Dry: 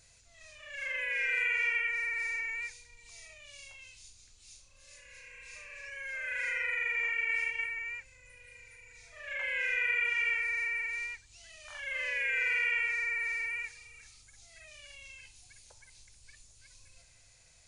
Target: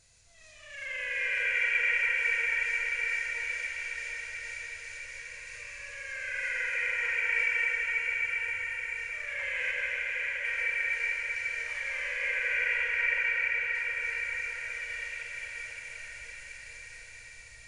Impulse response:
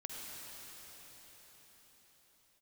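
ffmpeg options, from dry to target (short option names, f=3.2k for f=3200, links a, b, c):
-filter_complex "[0:a]asettb=1/sr,asplit=3[a][b][c];[a]atrim=end=9.714[d];[b]atrim=start=9.71:end=10.45,asetpts=PTS-STARTPTS,afade=t=in:d=0.004:c=qsin,afade=t=out:st=0.736:d=0.004:c=qsin,agate=range=-33dB:threshold=-22dB:ratio=3:detection=peak[e];[c]atrim=start=10.446[f];[d][e]acrossfade=d=0.004:c1=hsin:c2=qsin[g];[g][f]acrossfade=d=0.004:c1=qsin:c2=hsin,asettb=1/sr,asplit=3[h][i][j];[h]atrim=end=11.804[k];[i]atrim=start=11.8:end=13.75,asetpts=PTS-STARTPTS,afade=t=in:d=0.004:c=qsin,afade=t=out:st=1.946:d=0.004:c=qsin,lowpass=2.8k[l];[j]atrim=start=13.746[m];[k][l]acrossfade=d=0.004:c1=hsin:c2=qsin[n];[n][m]acrossfade=d=0.004:c1=qsin:c2=hsin[o];[1:a]atrim=start_sample=2205,asetrate=22491,aresample=44100[p];[o][p]afir=irnorm=-1:irlink=0"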